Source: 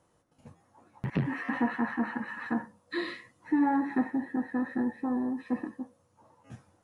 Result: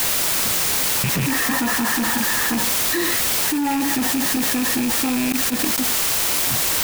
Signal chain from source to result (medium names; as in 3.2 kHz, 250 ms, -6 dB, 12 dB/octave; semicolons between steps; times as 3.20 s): rattle on loud lows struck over -35 dBFS, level -24 dBFS; word length cut 6-bit, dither triangular; saturation -25.5 dBFS, distortion -12 dB; 5.32–5.78 s: gate -30 dBFS, range -25 dB; level flattener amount 100%; trim +7 dB